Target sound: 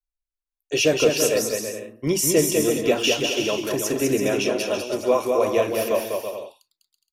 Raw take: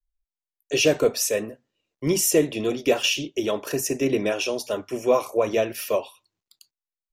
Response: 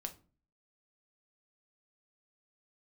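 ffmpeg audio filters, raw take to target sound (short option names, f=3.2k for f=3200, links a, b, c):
-af "agate=range=-9dB:threshold=-36dB:ratio=16:detection=peak,aecho=1:1:200|330|414.5|469.4|505.1:0.631|0.398|0.251|0.158|0.1"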